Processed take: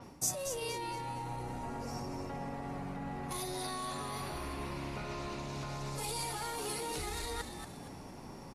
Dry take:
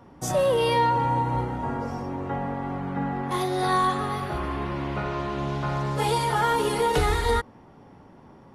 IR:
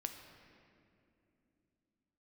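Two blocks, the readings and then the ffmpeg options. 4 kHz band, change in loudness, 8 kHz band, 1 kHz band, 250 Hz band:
-8.5 dB, -13.5 dB, 0.0 dB, -15.5 dB, -12.5 dB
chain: -filter_complex "[0:a]equalizer=f=3.2k:t=o:w=0.37:g=-11,alimiter=limit=-22dB:level=0:latency=1,areverse,acompressor=threshold=-40dB:ratio=5,areverse,asoftclip=type=tanh:threshold=-31dB,aexciter=amount=3.9:drive=5.9:freq=2.4k,asplit=5[a][b][c][d][e];[b]adelay=232,afreqshift=-110,volume=-7.5dB[f];[c]adelay=464,afreqshift=-220,volume=-16.4dB[g];[d]adelay=696,afreqshift=-330,volume=-25.2dB[h];[e]adelay=928,afreqshift=-440,volume=-34.1dB[i];[a][f][g][h][i]amix=inputs=5:normalize=0,aresample=32000,aresample=44100,adynamicequalizer=threshold=0.00282:dfrequency=6700:dqfactor=0.7:tfrequency=6700:tqfactor=0.7:attack=5:release=100:ratio=0.375:range=2.5:mode=cutabove:tftype=highshelf,volume=1dB"

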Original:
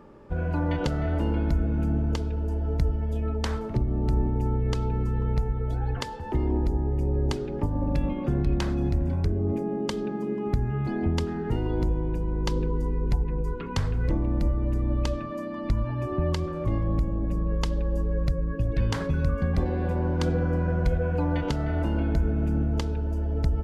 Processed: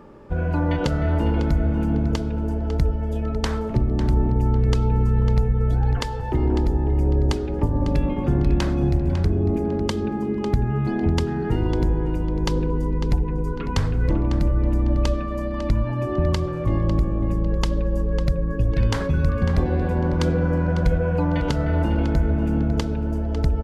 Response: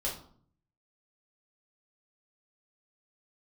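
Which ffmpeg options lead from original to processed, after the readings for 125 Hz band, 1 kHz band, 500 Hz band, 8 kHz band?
+5.0 dB, +5.0 dB, +4.5 dB, n/a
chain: -filter_complex "[0:a]asplit=2[a][b];[b]adelay=550,lowpass=f=4.9k:p=1,volume=-9.5dB,asplit=2[c][d];[d]adelay=550,lowpass=f=4.9k:p=1,volume=0.29,asplit=2[e][f];[f]adelay=550,lowpass=f=4.9k:p=1,volume=0.29[g];[a][c][e][g]amix=inputs=4:normalize=0,volume=4.5dB"

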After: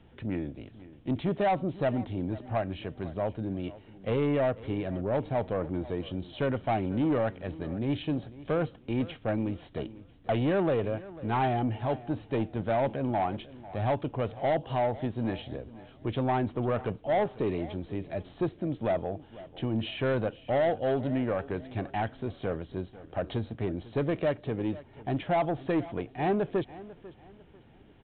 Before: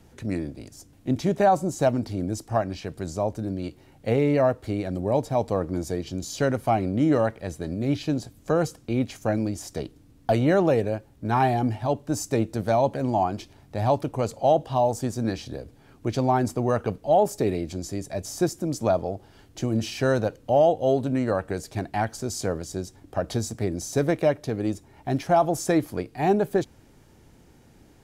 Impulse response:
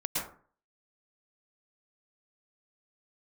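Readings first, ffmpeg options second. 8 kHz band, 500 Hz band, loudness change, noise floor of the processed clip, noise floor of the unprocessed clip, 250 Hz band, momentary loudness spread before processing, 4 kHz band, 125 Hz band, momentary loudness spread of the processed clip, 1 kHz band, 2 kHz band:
under -40 dB, -6.0 dB, -5.5 dB, -55 dBFS, -55 dBFS, -5.0 dB, 12 LU, -5.0 dB, -5.0 dB, 10 LU, -6.5 dB, -4.0 dB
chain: -af "equalizer=f=3k:t=o:w=0.37:g=4.5,aresample=8000,asoftclip=type=tanh:threshold=-18dB,aresample=44100,aecho=1:1:496|992|1488:0.126|0.0403|0.0129,volume=-3dB"

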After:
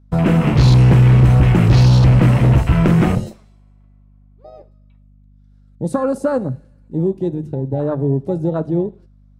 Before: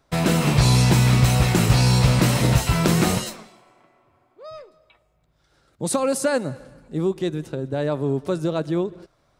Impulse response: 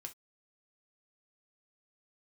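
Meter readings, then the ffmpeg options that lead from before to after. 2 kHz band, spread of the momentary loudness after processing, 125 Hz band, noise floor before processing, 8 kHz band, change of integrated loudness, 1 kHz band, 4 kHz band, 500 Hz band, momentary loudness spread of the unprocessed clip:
-1.0 dB, 14 LU, +7.5 dB, -65 dBFS, under -10 dB, +6.0 dB, +1.0 dB, -5.0 dB, +3.0 dB, 12 LU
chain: -filter_complex "[0:a]bandreject=f=50:t=h:w=6,bandreject=f=100:t=h:w=6,bandreject=f=150:t=h:w=6,afwtdn=0.0447,lowshelf=f=150:g=11.5,aeval=exprs='val(0)+0.00316*(sin(2*PI*50*n/s)+sin(2*PI*2*50*n/s)/2+sin(2*PI*3*50*n/s)/3+sin(2*PI*4*50*n/s)/4+sin(2*PI*5*50*n/s)/5)':c=same,asoftclip=type=hard:threshold=-8.5dB,asplit=2[a][b];[1:a]atrim=start_sample=2205,asetrate=27342,aresample=44100[c];[b][c]afir=irnorm=-1:irlink=0,volume=-7.5dB[d];[a][d]amix=inputs=2:normalize=0"

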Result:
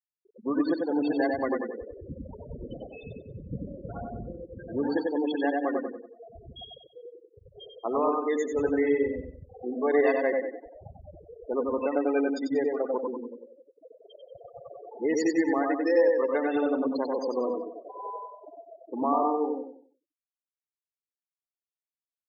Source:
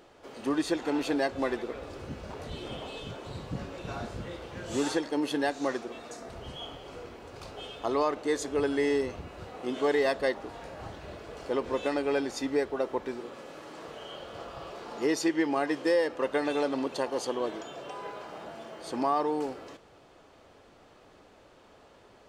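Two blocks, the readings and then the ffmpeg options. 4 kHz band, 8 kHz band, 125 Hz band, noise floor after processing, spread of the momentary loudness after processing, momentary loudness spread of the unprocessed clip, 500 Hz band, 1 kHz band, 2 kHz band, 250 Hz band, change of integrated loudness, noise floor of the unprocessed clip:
-8.0 dB, n/a, -1.5 dB, under -85 dBFS, 20 LU, 16 LU, +3.0 dB, +1.5 dB, -0.5 dB, +3.0 dB, +3.5 dB, -57 dBFS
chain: -filter_complex "[0:a]asplit=2[a][b];[b]adelay=97,lowpass=f=4.1k:p=1,volume=-4dB,asplit=2[c][d];[d]adelay=97,lowpass=f=4.1k:p=1,volume=0.15,asplit=2[e][f];[f]adelay=97,lowpass=f=4.1k:p=1,volume=0.15[g];[c][e][g]amix=inputs=3:normalize=0[h];[a][h]amix=inputs=2:normalize=0,afftfilt=real='re*gte(hypot(re,im),0.0501)':imag='im*gte(hypot(re,im),0.0501)':win_size=1024:overlap=0.75,asplit=2[i][j];[j]aecho=0:1:93|186|279|372:0.531|0.159|0.0478|0.0143[k];[i][k]amix=inputs=2:normalize=0"

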